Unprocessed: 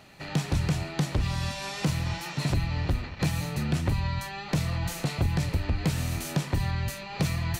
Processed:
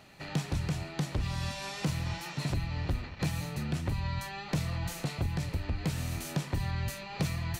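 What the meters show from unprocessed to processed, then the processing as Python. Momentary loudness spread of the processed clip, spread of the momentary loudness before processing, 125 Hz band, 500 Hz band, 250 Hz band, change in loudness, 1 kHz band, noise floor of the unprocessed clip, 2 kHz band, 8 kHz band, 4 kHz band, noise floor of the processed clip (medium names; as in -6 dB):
3 LU, 4 LU, -5.0 dB, -5.0 dB, -5.0 dB, -5.0 dB, -4.5 dB, -40 dBFS, -4.5 dB, -4.5 dB, -4.5 dB, -44 dBFS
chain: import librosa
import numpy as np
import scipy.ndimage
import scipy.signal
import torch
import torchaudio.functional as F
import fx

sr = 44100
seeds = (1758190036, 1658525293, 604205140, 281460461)

y = fx.rider(x, sr, range_db=10, speed_s=0.5)
y = y * 10.0 ** (-5.0 / 20.0)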